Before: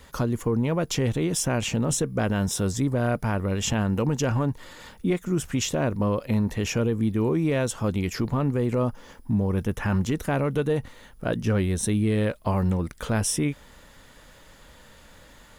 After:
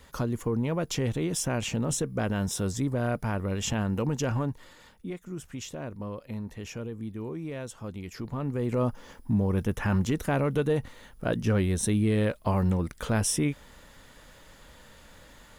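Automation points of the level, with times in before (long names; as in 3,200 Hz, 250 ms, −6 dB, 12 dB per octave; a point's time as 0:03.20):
0:04.39 −4 dB
0:05.06 −12.5 dB
0:08.05 −12.5 dB
0:08.86 −1.5 dB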